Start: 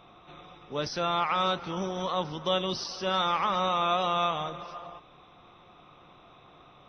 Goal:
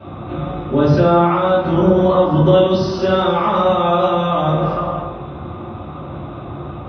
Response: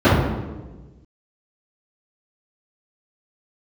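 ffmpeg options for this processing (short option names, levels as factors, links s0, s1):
-filter_complex "[0:a]asettb=1/sr,asplit=3[s0][s1][s2];[s0]atrim=end=2.524[s3];[s1]atrim=start=2.52:end=4.6,asetpts=PTS-STARTPTS,afade=t=in:d=0.004:c=qsin,afade=t=out:st=2.076:d=0.004:c=qsin,highshelf=f=4000:g=9.5[s4];[s2]atrim=start=4.596[s5];[s3][s4]acrossfade=d=0.004:c1=hsin:c2=qsin[s6];[s6][s5]acrossfade=d=0.004:c1=qsin:c2=hsin,acompressor=threshold=0.0178:ratio=4[s7];[1:a]atrim=start_sample=2205,afade=t=out:st=0.35:d=0.01,atrim=end_sample=15876[s8];[s7][s8]afir=irnorm=-1:irlink=0,volume=0.447"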